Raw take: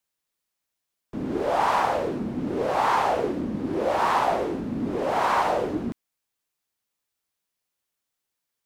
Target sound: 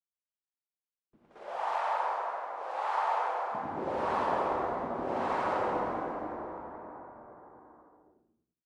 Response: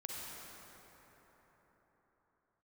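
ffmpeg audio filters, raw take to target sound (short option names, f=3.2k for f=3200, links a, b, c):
-filter_complex "[0:a]aemphasis=mode=reproduction:type=cd,agate=range=-16dB:threshold=-26dB:ratio=16:detection=peak,asplit=3[a][b][c];[a]afade=t=out:st=1.16:d=0.02[d];[b]highpass=f=610:w=0.5412,highpass=f=610:w=1.3066,afade=t=in:st=1.16:d=0.02,afade=t=out:st=3.51:d=0.02[e];[c]afade=t=in:st=3.51:d=0.02[f];[d][e][f]amix=inputs=3:normalize=0,asplit=2[g][h];[h]adelay=86,lowpass=f=2k:p=1,volume=-5dB,asplit=2[i][j];[j]adelay=86,lowpass=f=2k:p=1,volume=0.28,asplit=2[k][l];[l]adelay=86,lowpass=f=2k:p=1,volume=0.28,asplit=2[m][n];[n]adelay=86,lowpass=f=2k:p=1,volume=0.28[o];[g][i][k][m][o]amix=inputs=5:normalize=0[p];[1:a]atrim=start_sample=2205[q];[p][q]afir=irnorm=-1:irlink=0,volume=-8dB" -ar 24000 -c:a aac -b:a 96k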